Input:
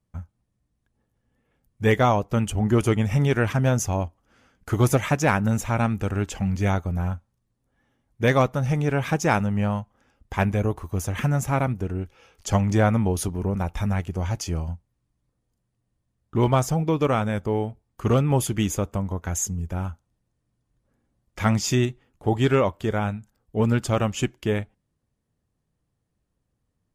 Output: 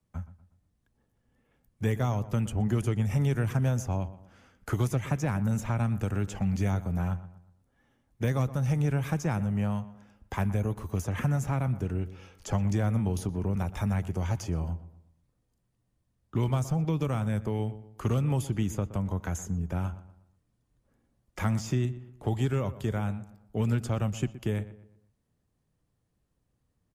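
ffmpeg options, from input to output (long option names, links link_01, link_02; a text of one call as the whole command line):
ffmpeg -i in.wav -filter_complex "[0:a]acrossover=split=88|180|1800|6700[link_01][link_02][link_03][link_04][link_05];[link_01]acompressor=threshold=-42dB:ratio=4[link_06];[link_02]acompressor=threshold=-27dB:ratio=4[link_07];[link_03]acompressor=threshold=-34dB:ratio=4[link_08];[link_04]acompressor=threshold=-49dB:ratio=4[link_09];[link_05]acompressor=threshold=-49dB:ratio=4[link_10];[link_06][link_07][link_08][link_09][link_10]amix=inputs=5:normalize=0,asplit=2[link_11][link_12];[link_12]adelay=121,lowpass=frequency=2200:poles=1,volume=-15dB,asplit=2[link_13][link_14];[link_14]adelay=121,lowpass=frequency=2200:poles=1,volume=0.4,asplit=2[link_15][link_16];[link_16]adelay=121,lowpass=frequency=2200:poles=1,volume=0.4,asplit=2[link_17][link_18];[link_18]adelay=121,lowpass=frequency=2200:poles=1,volume=0.4[link_19];[link_13][link_15][link_17][link_19]amix=inputs=4:normalize=0[link_20];[link_11][link_20]amix=inputs=2:normalize=0" out.wav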